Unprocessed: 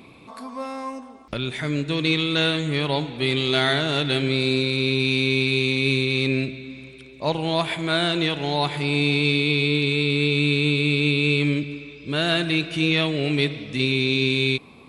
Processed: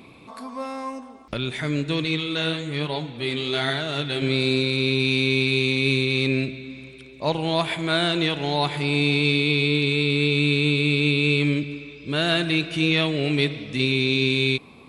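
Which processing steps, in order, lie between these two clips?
2.04–4.22 s: flange 1.1 Hz, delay 4.3 ms, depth 8.4 ms, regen +51%

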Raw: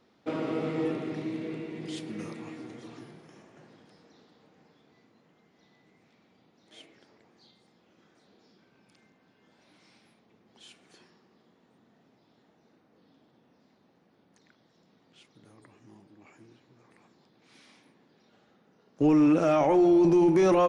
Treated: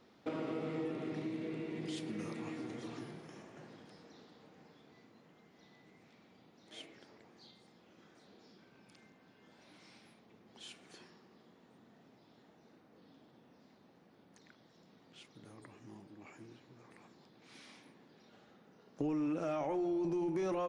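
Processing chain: compression 3:1, threshold -40 dBFS, peak gain reduction 15.5 dB; trim +1 dB

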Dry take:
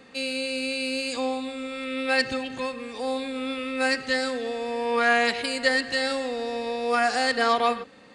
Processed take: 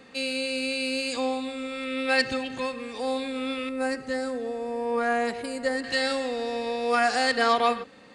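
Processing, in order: 3.69–5.84 s: peaking EQ 3.3 kHz -14 dB 2.3 oct

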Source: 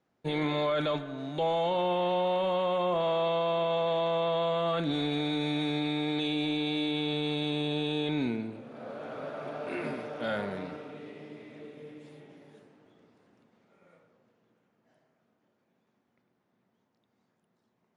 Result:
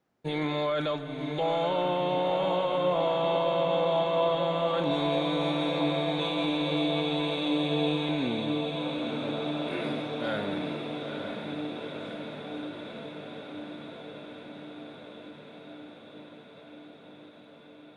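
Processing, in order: echo that smears into a reverb 920 ms, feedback 76%, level -6 dB; endings held to a fixed fall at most 140 dB/s

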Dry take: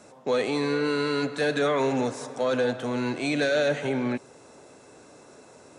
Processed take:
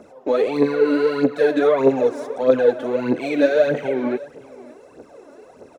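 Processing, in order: delay 560 ms -21 dB; phaser 1.6 Hz, delay 3.6 ms, feedback 67%; graphic EQ 125/250/500/4000/8000 Hz -5/+4/+8/-4/-10 dB; trim -1 dB

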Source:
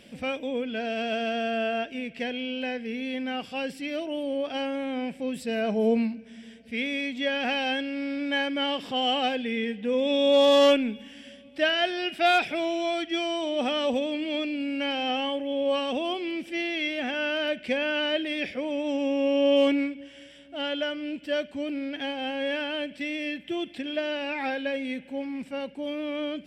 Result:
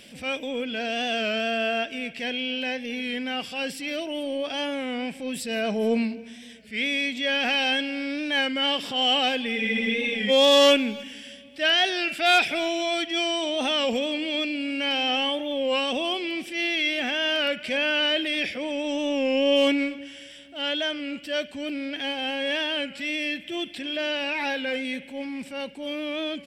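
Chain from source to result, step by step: treble shelf 2 kHz +10 dB; transient shaper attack -6 dB, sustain +1 dB; speakerphone echo 270 ms, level -20 dB; spectral freeze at 9.58 s, 0.72 s; warped record 33 1/3 rpm, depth 100 cents

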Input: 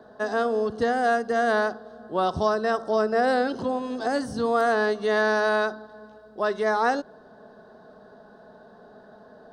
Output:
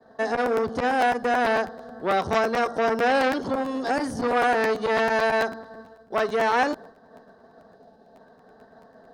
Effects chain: expander -43 dBFS; time-frequency box 8.07–8.53 s, 850–2100 Hz -7 dB; speed mistake 24 fps film run at 25 fps; crackling interface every 0.11 s, samples 512, repeat, from 0.34 s; transformer saturation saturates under 1.4 kHz; trim +3.5 dB

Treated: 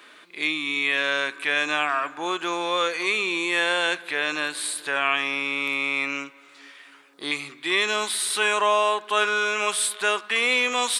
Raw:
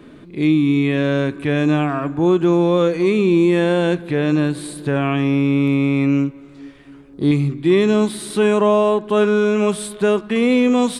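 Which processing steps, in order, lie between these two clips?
high-pass 1.3 kHz 12 dB/octave; trim +6 dB

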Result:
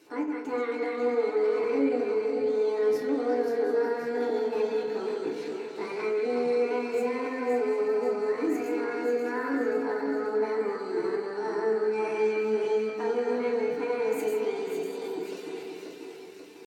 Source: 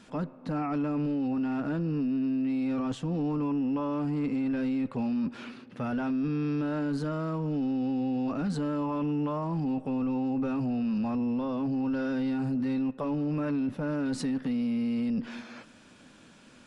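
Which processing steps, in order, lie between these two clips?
backward echo that repeats 269 ms, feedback 71%, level -4.5 dB; high-pass 82 Hz 12 dB/octave; on a send: repeats whose band climbs or falls 183 ms, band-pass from 1.3 kHz, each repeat 0.7 oct, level -1.5 dB; on the sum: pitch shift +8.5 st; FDN reverb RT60 0.54 s, low-frequency decay 1.1×, high-frequency decay 0.5×, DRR -2 dB; trim -6.5 dB

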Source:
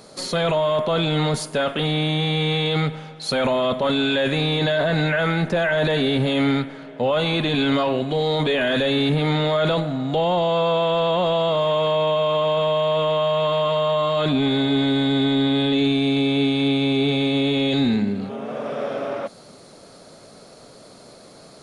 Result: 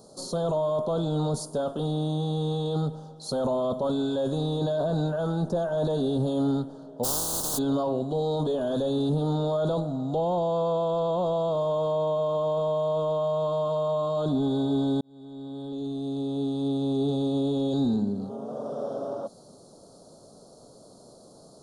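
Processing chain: 7.03–7.57 s: spectral contrast reduction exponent 0.12; Butterworth band-stop 2.2 kHz, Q 0.55; 15.01–17.10 s: fade in; trim -5 dB

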